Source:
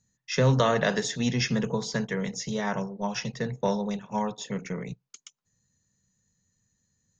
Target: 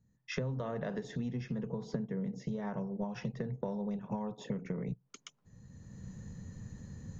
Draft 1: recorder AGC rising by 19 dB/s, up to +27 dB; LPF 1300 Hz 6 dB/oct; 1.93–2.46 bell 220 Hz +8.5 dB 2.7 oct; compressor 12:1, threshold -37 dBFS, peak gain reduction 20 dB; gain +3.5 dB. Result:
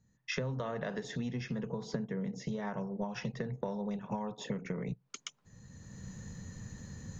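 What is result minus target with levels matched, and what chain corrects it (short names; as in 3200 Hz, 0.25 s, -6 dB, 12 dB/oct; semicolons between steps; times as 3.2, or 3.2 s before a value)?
1000 Hz band +2.5 dB
recorder AGC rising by 19 dB/s, up to +27 dB; LPF 500 Hz 6 dB/oct; 1.93–2.46 bell 220 Hz +8.5 dB 2.7 oct; compressor 12:1, threshold -37 dBFS, peak gain reduction 19.5 dB; gain +3.5 dB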